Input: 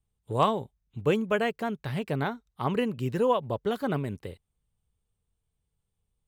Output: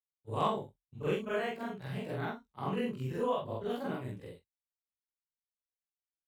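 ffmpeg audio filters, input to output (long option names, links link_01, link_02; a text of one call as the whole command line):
ffmpeg -i in.wav -af "afftfilt=real='re':imag='-im':win_size=4096:overlap=0.75,agate=range=-33dB:threshold=-46dB:ratio=3:detection=peak,flanger=delay=16:depth=5.8:speed=0.5" out.wav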